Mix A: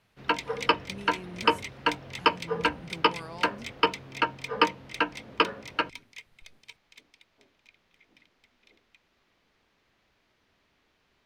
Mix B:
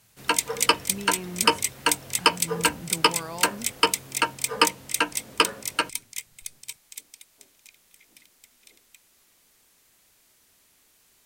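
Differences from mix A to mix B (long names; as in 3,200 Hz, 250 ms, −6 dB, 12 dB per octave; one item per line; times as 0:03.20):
speech +6.0 dB
background: remove high-frequency loss of the air 270 metres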